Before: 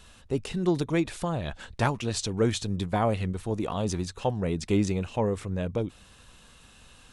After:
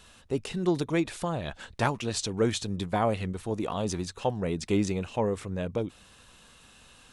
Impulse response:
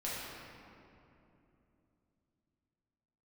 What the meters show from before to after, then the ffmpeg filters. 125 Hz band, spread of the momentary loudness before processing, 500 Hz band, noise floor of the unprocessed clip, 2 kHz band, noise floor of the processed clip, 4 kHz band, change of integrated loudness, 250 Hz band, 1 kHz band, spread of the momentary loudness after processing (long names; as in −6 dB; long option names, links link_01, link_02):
−3.5 dB, 5 LU, −0.5 dB, −55 dBFS, 0.0 dB, −56 dBFS, 0.0 dB, −1.0 dB, −1.5 dB, 0.0 dB, 6 LU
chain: -af "lowshelf=frequency=120:gain=-7"